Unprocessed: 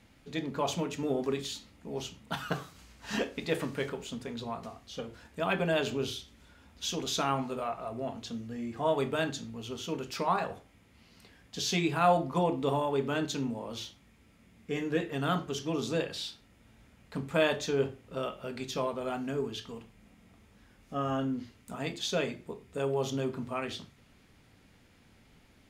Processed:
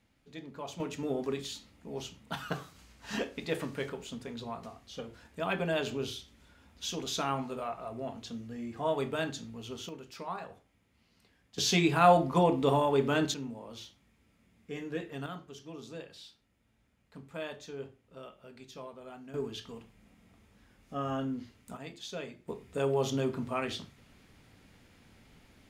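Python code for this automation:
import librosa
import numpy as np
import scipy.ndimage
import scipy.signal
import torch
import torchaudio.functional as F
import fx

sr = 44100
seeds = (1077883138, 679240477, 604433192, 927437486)

y = fx.gain(x, sr, db=fx.steps((0.0, -10.5), (0.8, -2.5), (9.89, -10.0), (11.58, 3.0), (13.34, -6.5), (15.26, -13.0), (19.34, -2.5), (21.77, -9.5), (22.48, 1.5)))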